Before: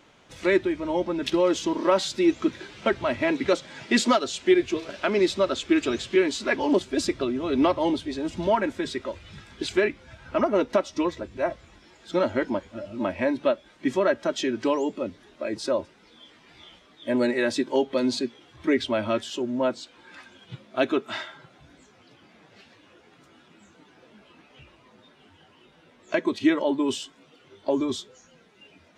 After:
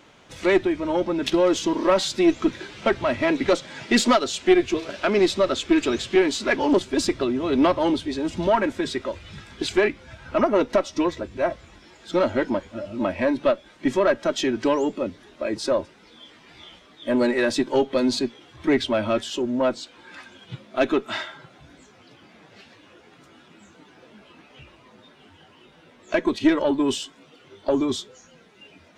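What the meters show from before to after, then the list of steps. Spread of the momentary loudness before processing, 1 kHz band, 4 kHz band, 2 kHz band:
11 LU, +3.0 dB, +3.0 dB, +2.5 dB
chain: one diode to ground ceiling -14.5 dBFS; gain +4 dB

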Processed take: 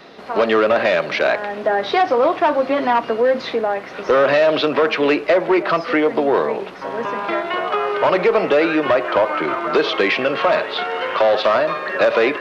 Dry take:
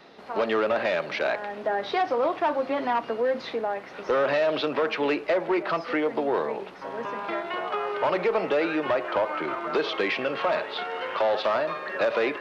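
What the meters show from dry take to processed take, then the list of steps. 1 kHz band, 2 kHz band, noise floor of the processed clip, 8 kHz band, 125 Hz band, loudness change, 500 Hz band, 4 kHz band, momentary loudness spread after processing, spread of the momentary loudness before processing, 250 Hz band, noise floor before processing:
+8.5 dB, +9.0 dB, -33 dBFS, n/a, +9.0 dB, +9.0 dB, +9.0 dB, +9.0 dB, 7 LU, 7 LU, +9.0 dB, -42 dBFS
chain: notch 860 Hz, Q 15; gain +9 dB

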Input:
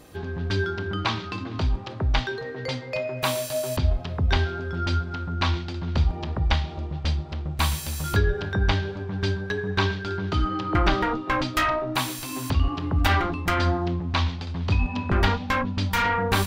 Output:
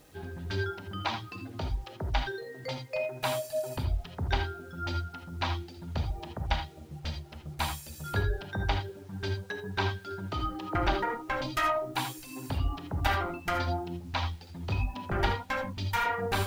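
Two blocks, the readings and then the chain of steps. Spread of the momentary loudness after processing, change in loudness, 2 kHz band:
10 LU, -7.5 dB, -6.5 dB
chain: notches 60/120/180/240/300/360/420/480/540 Hz; reverb removal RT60 1.3 s; notch 1100 Hz, Q 8.8; dynamic EQ 790 Hz, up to +6 dB, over -40 dBFS, Q 1; bit-crush 9-bit; non-linear reverb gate 0.1 s rising, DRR 5.5 dB; gain -8 dB

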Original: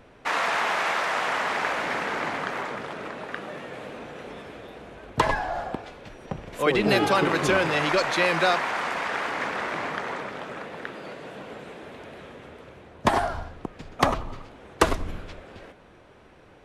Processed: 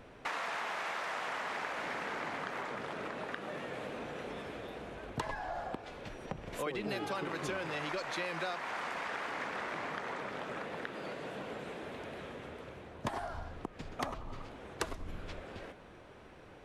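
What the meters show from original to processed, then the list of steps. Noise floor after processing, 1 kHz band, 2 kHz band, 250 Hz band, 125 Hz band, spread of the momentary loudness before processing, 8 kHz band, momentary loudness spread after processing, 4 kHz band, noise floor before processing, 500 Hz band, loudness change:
-54 dBFS, -12.5 dB, -12.5 dB, -12.5 dB, -11.5 dB, 20 LU, -12.0 dB, 10 LU, -13.0 dB, -52 dBFS, -12.5 dB, -14.0 dB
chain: compressor 4:1, threshold -35 dBFS, peak gain reduction 18 dB; gain -2 dB

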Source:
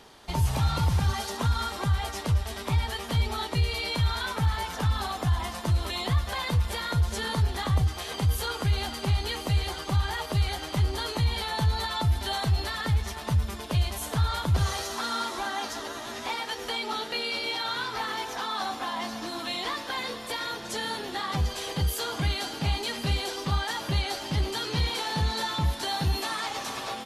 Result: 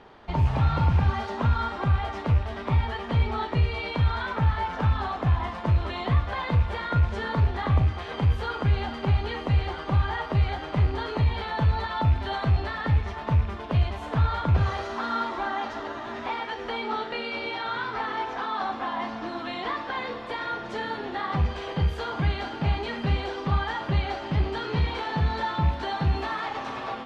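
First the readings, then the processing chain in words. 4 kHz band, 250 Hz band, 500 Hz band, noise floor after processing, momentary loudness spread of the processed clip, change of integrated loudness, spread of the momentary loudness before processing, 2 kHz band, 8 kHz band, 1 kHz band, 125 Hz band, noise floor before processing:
-7.0 dB, +3.0 dB, +3.0 dB, -36 dBFS, 7 LU, +1.5 dB, 5 LU, +1.0 dB, under -15 dB, +3.0 dB, +2.5 dB, -38 dBFS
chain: rattling part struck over -24 dBFS, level -32 dBFS; LPF 2100 Hz 12 dB/oct; Schroeder reverb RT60 0.37 s, combs from 27 ms, DRR 8.5 dB; gain +2.5 dB

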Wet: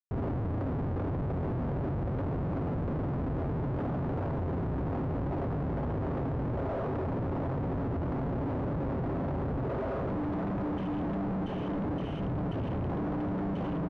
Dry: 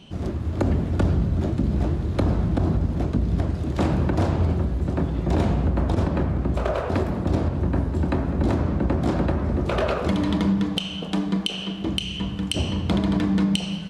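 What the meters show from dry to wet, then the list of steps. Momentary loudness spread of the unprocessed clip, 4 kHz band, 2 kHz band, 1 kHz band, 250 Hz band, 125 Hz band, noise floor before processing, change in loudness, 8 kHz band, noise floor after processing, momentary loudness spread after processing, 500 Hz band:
5 LU, under -25 dB, -11.0 dB, -6.0 dB, -9.0 dB, -9.0 dB, -31 dBFS, -9.0 dB, n/a, -33 dBFS, 0 LU, -6.5 dB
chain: comb 7.4 ms, depth 58%; on a send: feedback echo 0.689 s, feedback 35%, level -8 dB; on the sum: Schmitt trigger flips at -36 dBFS; LPF 1000 Hz 12 dB/oct; gain -8 dB

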